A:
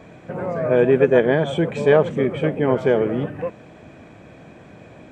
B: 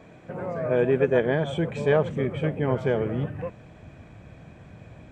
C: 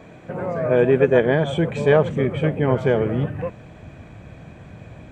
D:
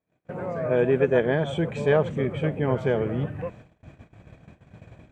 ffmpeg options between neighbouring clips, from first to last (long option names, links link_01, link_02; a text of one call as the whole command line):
ffmpeg -i in.wav -af "asubboost=boost=4.5:cutoff=140,volume=-5.5dB" out.wav
ffmpeg -i in.wav -af "bandreject=frequency=5300:width=18,volume=5.5dB" out.wav
ffmpeg -i in.wav -af "agate=range=-36dB:threshold=-39dB:ratio=16:detection=peak,volume=-5dB" out.wav